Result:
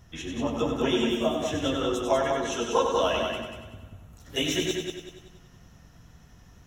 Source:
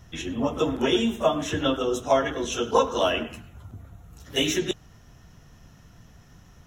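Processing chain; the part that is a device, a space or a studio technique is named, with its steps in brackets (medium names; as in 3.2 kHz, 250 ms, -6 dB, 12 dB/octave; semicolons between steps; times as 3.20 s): multi-head tape echo (multi-head delay 95 ms, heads first and second, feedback 43%, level -6 dB; wow and flutter 17 cents); 1.23–1.76 s: peaking EQ 1.1 kHz -5.5 dB 1.1 oct; trim -4 dB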